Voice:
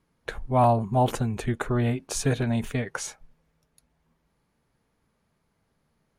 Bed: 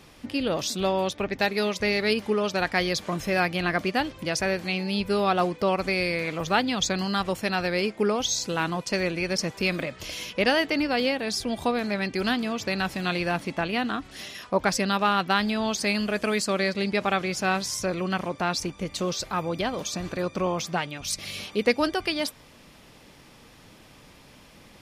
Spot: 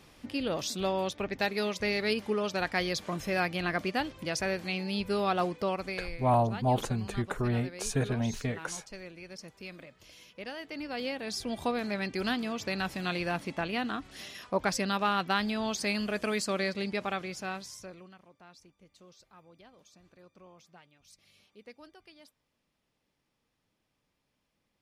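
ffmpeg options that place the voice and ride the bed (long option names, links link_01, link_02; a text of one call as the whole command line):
ffmpeg -i stem1.wav -i stem2.wav -filter_complex "[0:a]adelay=5700,volume=-5dB[link_01];[1:a]volume=8dB,afade=type=out:start_time=5.54:duration=0.66:silence=0.211349,afade=type=in:start_time=10.58:duration=1:silence=0.211349,afade=type=out:start_time=16.59:duration=1.56:silence=0.0707946[link_02];[link_01][link_02]amix=inputs=2:normalize=0" out.wav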